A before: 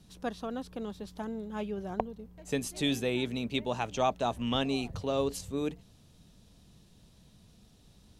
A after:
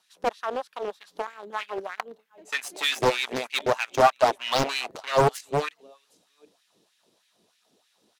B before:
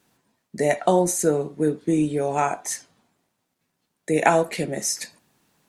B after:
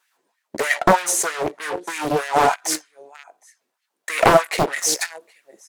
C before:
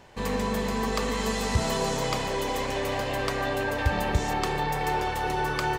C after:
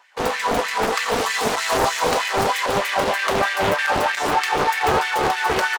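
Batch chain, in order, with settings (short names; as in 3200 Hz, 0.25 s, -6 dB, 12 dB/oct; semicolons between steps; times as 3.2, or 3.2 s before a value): echo 0.764 s -21 dB; in parallel at -3.5 dB: fuzz box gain 28 dB, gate -34 dBFS; on the sum: LFO high-pass sine 3.2 Hz 330–2000 Hz; Doppler distortion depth 0.93 ms; gain -2.5 dB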